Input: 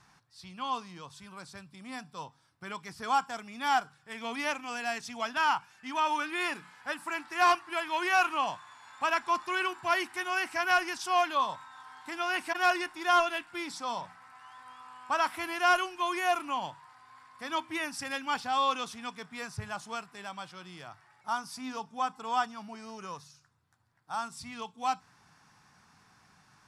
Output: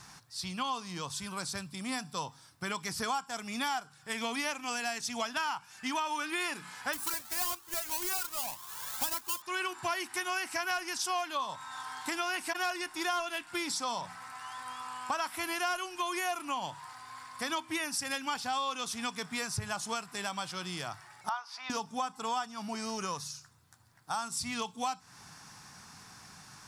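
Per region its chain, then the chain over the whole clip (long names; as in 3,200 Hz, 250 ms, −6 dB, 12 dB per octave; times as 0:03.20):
0:06.93–0:09.42: each half-wave held at its own peak + high-shelf EQ 9,500 Hz +10.5 dB + flanger whose copies keep moving one way rising 1.8 Hz
0:21.29–0:21.70: high-pass filter 690 Hz 24 dB per octave + high-frequency loss of the air 280 metres
whole clip: bass and treble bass +1 dB, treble +9 dB; downward compressor 6 to 1, threshold −39 dBFS; level +7.5 dB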